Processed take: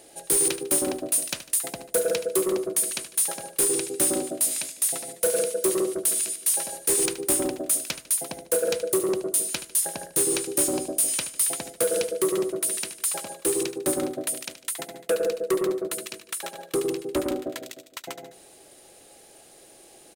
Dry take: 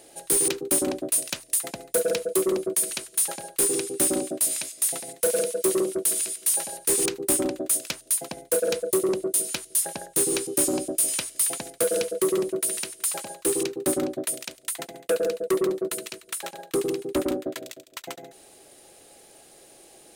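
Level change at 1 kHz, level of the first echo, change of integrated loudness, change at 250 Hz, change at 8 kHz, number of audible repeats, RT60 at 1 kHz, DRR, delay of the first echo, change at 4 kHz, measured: +0.5 dB, −13.0 dB, 0.0 dB, −1.0 dB, +0.5 dB, 3, no reverb audible, no reverb audible, 75 ms, +0.5 dB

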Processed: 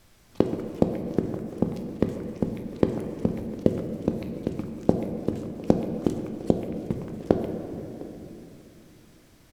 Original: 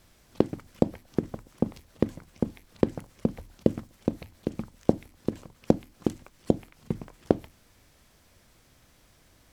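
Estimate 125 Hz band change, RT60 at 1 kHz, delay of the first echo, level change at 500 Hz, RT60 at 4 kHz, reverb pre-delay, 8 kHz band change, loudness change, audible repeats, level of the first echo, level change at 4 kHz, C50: +3.0 dB, 2.5 s, 705 ms, +3.0 dB, 2.0 s, 9 ms, can't be measured, +2.5 dB, 1, −22.0 dB, +2.0 dB, 6.0 dB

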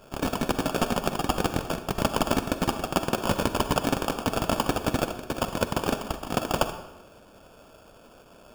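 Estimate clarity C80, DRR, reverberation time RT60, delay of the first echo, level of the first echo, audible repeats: 12.0 dB, 9.5 dB, 0.95 s, no echo audible, no echo audible, no echo audible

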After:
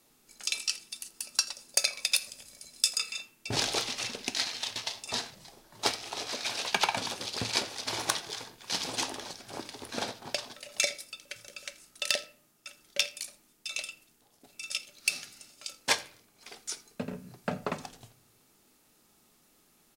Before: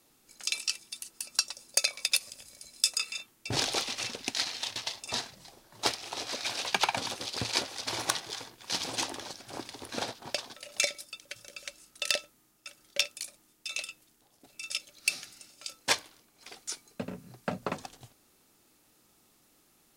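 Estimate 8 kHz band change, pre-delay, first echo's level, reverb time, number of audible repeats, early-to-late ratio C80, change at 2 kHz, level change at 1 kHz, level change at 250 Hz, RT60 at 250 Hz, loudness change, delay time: +0.5 dB, 4 ms, −23.0 dB, 0.45 s, 1, 20.5 dB, +0.5 dB, 0.0 dB, +0.5 dB, 0.60 s, 0.0 dB, 83 ms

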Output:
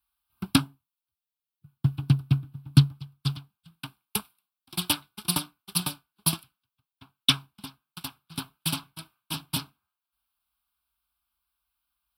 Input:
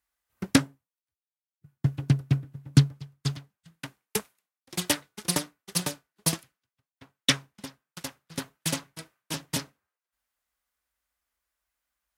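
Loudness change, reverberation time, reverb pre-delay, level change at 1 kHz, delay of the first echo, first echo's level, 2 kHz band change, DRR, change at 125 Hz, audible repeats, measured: +0.5 dB, no reverb audible, no reverb audible, +1.0 dB, no echo audible, no echo audible, −3.0 dB, no reverb audible, +1.0 dB, no echo audible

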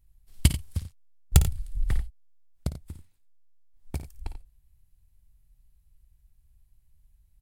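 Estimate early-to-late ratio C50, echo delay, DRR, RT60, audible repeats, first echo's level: no reverb audible, 55 ms, no reverb audible, no reverb audible, 2, −12.0 dB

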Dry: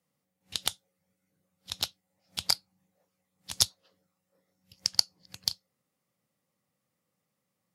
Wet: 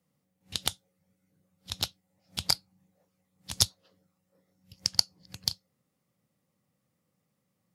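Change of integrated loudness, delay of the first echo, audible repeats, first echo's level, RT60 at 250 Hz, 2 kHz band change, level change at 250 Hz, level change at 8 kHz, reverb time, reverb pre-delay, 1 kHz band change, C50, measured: 0.0 dB, no echo audible, no echo audible, no echo audible, no reverb audible, +0.5 dB, +6.0 dB, 0.0 dB, no reverb audible, no reverb audible, +1.0 dB, no reverb audible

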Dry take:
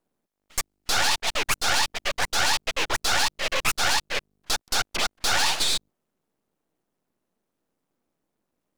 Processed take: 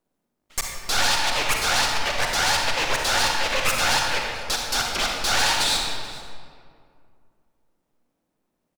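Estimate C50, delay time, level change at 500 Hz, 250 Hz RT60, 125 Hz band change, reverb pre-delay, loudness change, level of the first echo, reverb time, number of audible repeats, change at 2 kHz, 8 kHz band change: 0.5 dB, 436 ms, +4.0 dB, 2.6 s, +4.5 dB, 40 ms, +2.5 dB, −19.5 dB, 2.2 s, 1, +3.0 dB, +1.5 dB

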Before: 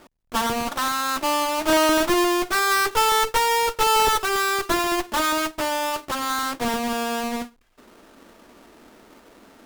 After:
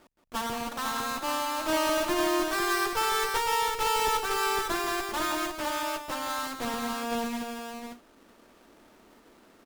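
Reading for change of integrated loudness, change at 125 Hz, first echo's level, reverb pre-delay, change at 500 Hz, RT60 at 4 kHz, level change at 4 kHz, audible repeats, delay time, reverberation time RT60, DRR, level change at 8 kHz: −7.0 dB, −7.0 dB, −8.0 dB, no reverb audible, −7.0 dB, no reverb audible, −7.0 dB, 2, 171 ms, no reverb audible, no reverb audible, −7.0 dB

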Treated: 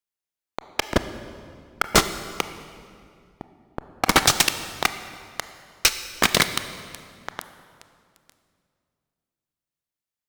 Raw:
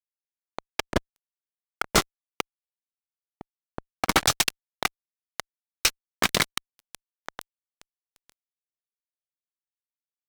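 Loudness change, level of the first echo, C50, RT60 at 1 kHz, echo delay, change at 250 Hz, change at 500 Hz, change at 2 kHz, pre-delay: +4.0 dB, no echo audible, 11.0 dB, 2.2 s, no echo audible, +4.5 dB, +4.5 dB, +4.5 dB, 24 ms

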